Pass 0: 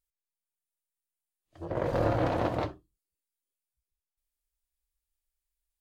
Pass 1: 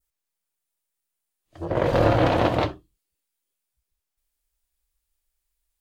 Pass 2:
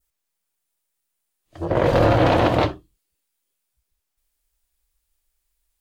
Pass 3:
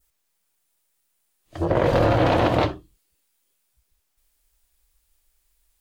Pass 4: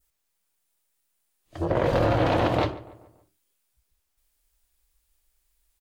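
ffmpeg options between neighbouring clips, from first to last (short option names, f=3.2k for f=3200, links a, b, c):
-af "adynamicequalizer=threshold=0.002:dfrequency=3100:dqfactor=1.3:tfrequency=3100:tqfactor=1.3:attack=5:release=100:ratio=0.375:range=3:mode=boostabove:tftype=bell,volume=8dB"
-af "alimiter=limit=-12dB:level=0:latency=1:release=13,volume=4.5dB"
-af "acompressor=threshold=-28dB:ratio=2,volume=6dB"
-filter_complex "[0:a]asplit=2[a][b];[b]adelay=143,lowpass=f=2.2k:p=1,volume=-17.5dB,asplit=2[c][d];[d]adelay=143,lowpass=f=2.2k:p=1,volume=0.49,asplit=2[e][f];[f]adelay=143,lowpass=f=2.2k:p=1,volume=0.49,asplit=2[g][h];[h]adelay=143,lowpass=f=2.2k:p=1,volume=0.49[i];[a][c][e][g][i]amix=inputs=5:normalize=0,volume=-3.5dB"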